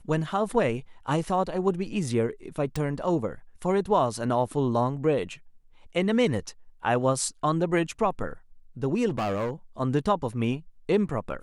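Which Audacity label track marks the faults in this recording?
2.760000	2.760000	pop
9.080000	9.510000	clipped -24.5 dBFS

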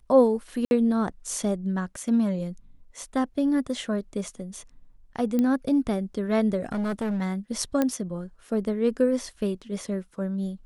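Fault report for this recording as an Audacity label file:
0.650000	0.710000	dropout 61 ms
5.390000	5.390000	pop -14 dBFS
6.640000	7.220000	clipped -24.5 dBFS
7.820000	7.820000	pop -11 dBFS

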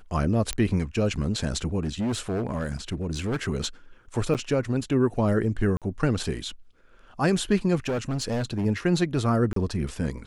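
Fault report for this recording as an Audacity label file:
0.530000	0.530000	pop -11 dBFS
1.830000	3.480000	clipped -23.5 dBFS
4.340000	4.350000	dropout 8.2 ms
5.770000	5.820000	dropout 47 ms
7.870000	8.660000	clipped -23.5 dBFS
9.530000	9.560000	dropout 33 ms

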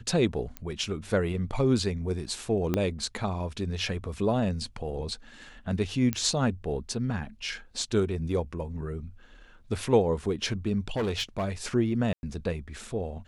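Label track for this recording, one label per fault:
0.570000	0.570000	pop -20 dBFS
2.740000	2.740000	pop -13 dBFS
6.130000	6.130000	pop -13 dBFS
10.960000	11.490000	clipped -24.5 dBFS
12.130000	12.230000	dropout 101 ms

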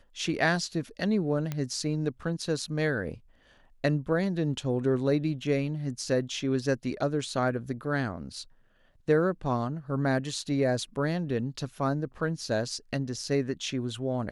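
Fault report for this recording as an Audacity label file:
1.520000	1.520000	pop -18 dBFS

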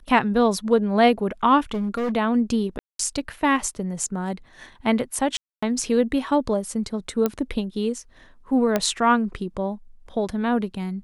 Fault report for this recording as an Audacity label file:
1.710000	2.120000	clipped -21.5 dBFS
2.790000	2.990000	dropout 203 ms
5.370000	5.620000	dropout 255 ms
7.260000	7.260000	pop -9 dBFS
8.760000	8.760000	pop -7 dBFS

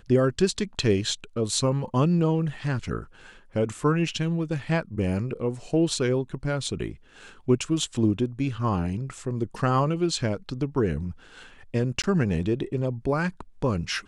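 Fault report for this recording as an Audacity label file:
12.020000	12.040000	dropout 17 ms

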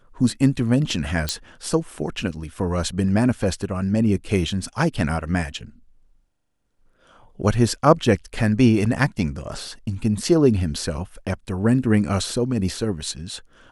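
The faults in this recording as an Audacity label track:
1.290000	1.290000	pop -7 dBFS

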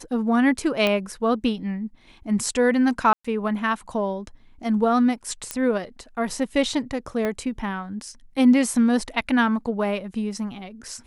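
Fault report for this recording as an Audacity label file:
0.870000	0.870000	pop -9 dBFS
3.130000	3.250000	dropout 115 ms
5.510000	5.510000	pop -10 dBFS
7.250000	7.250000	pop -14 dBFS

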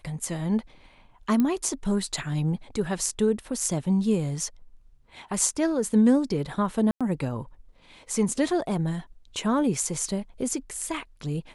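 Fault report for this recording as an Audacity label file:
1.400000	1.400000	pop -13 dBFS
6.910000	7.010000	dropout 96 ms

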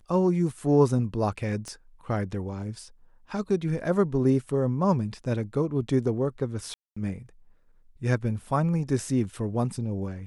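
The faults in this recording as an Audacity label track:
1.680000	1.680000	pop -25 dBFS
6.740000	6.960000	dropout 225 ms

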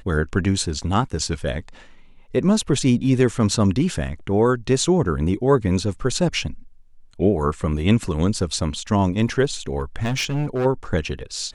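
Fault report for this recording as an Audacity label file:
9.800000	10.660000	clipped -18.5 dBFS

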